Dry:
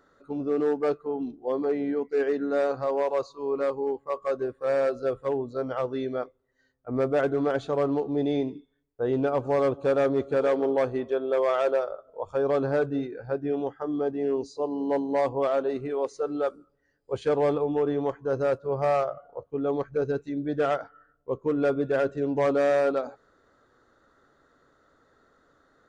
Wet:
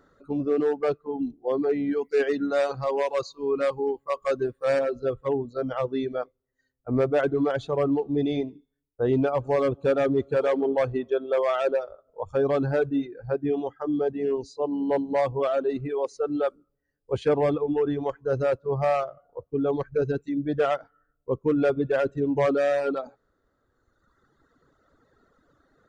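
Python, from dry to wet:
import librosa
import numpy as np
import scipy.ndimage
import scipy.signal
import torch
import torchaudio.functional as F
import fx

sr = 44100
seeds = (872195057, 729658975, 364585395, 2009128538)

y = fx.high_shelf(x, sr, hz=2200.0, db=9.0, at=(1.91, 4.79))
y = fx.dynamic_eq(y, sr, hz=2800.0, q=1.1, threshold_db=-49.0, ratio=4.0, max_db=4)
y = fx.dereverb_blind(y, sr, rt60_s=1.9)
y = fx.low_shelf(y, sr, hz=320.0, db=8.0)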